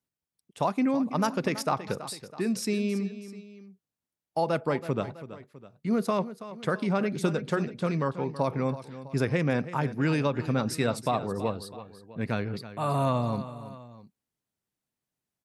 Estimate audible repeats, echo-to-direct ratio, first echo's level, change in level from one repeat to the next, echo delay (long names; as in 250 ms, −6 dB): 2, −13.0 dB, −14.0 dB, −5.5 dB, 327 ms